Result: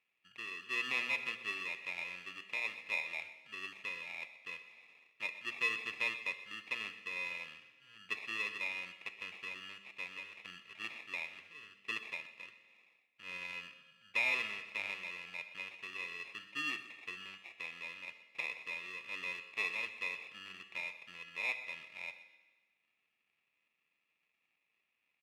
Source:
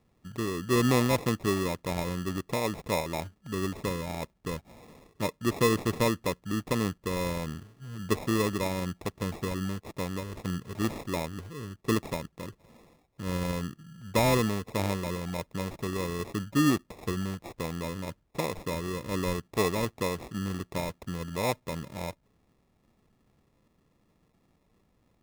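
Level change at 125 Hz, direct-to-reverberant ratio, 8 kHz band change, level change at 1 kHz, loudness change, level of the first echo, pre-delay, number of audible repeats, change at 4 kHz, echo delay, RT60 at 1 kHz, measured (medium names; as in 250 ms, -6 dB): under -35 dB, 8.5 dB, -18.5 dB, -15.5 dB, -8.5 dB, -16.5 dB, 9 ms, 1, -6.0 dB, 125 ms, 1.3 s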